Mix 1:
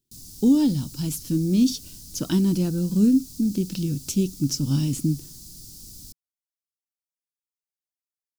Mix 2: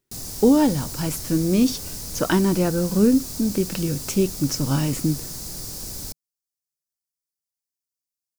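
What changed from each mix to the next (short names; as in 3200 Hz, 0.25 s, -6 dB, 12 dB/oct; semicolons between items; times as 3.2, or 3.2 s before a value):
background +9.5 dB; master: add band shelf 1000 Hz +15 dB 2.8 oct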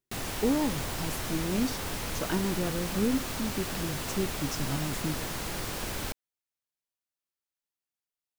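speech -11.0 dB; background: add EQ curve 160 Hz 0 dB, 1500 Hz +13 dB, 3100 Hz +12 dB, 4900 Hz -6 dB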